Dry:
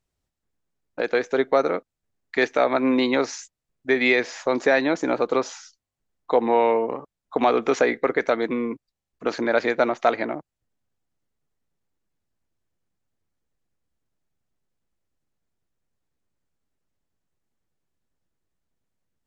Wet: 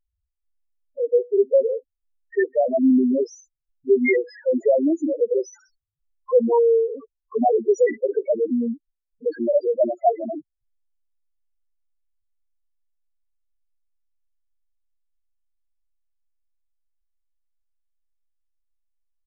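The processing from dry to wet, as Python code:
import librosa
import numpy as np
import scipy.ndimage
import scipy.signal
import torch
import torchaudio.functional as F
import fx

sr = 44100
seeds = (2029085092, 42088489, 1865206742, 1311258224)

y = fx.env_lowpass(x, sr, base_hz=3000.0, full_db=-15.5)
y = fx.spec_topn(y, sr, count=2)
y = y * librosa.db_to_amplitude(6.5)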